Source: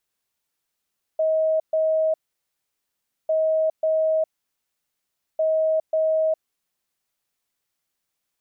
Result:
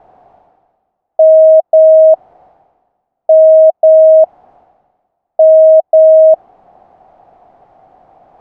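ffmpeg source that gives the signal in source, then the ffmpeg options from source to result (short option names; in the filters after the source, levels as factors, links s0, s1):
-f lavfi -i "aevalsrc='0.133*sin(2*PI*634*t)*clip(min(mod(mod(t,2.1),0.54),0.41-mod(mod(t,2.1),0.54))/0.005,0,1)*lt(mod(t,2.1),1.08)':d=6.3:s=44100"
-af "areverse,acompressor=mode=upward:threshold=0.0282:ratio=2.5,areverse,lowpass=f=740:t=q:w=8,alimiter=level_in=3.76:limit=0.891:release=50:level=0:latency=1"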